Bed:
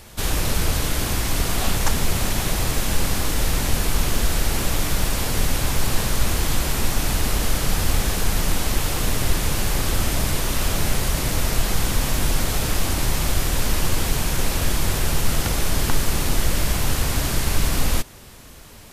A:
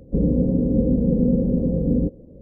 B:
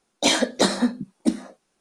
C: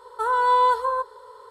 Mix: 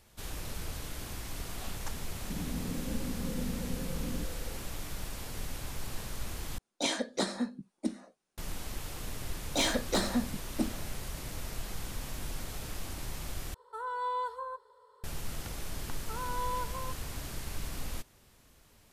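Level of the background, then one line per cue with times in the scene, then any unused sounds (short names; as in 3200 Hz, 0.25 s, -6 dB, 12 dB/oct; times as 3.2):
bed -18 dB
2.16 add A -17.5 dB + bands offset in time lows, highs 0.35 s, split 410 Hz
6.58 replace with B -12 dB
9.33 add B -15 dB + sample leveller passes 2
13.54 replace with C -15.5 dB
15.9 add C -17.5 dB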